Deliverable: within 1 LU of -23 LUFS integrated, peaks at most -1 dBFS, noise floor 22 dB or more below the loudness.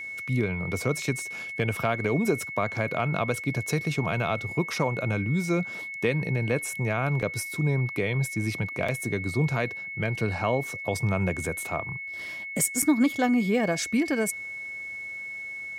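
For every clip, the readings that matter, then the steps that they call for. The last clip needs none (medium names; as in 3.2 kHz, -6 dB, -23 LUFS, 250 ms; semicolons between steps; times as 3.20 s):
dropouts 3; longest dropout 5.3 ms; steady tone 2.2 kHz; tone level -34 dBFS; loudness -27.5 LUFS; peak level -11.0 dBFS; loudness target -23.0 LUFS
-> interpolate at 7.22/8.88/12.82 s, 5.3 ms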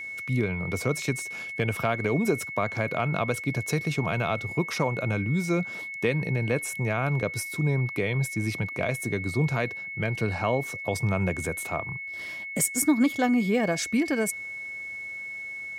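dropouts 0; steady tone 2.2 kHz; tone level -34 dBFS
-> band-stop 2.2 kHz, Q 30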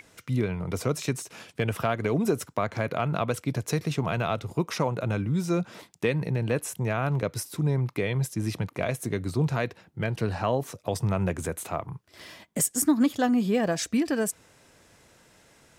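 steady tone not found; loudness -28.0 LUFS; peak level -11.5 dBFS; loudness target -23.0 LUFS
-> trim +5 dB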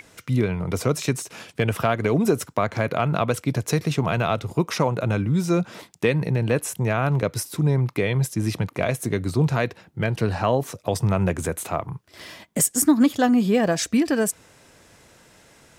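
loudness -23.0 LUFS; peak level -6.5 dBFS; noise floor -56 dBFS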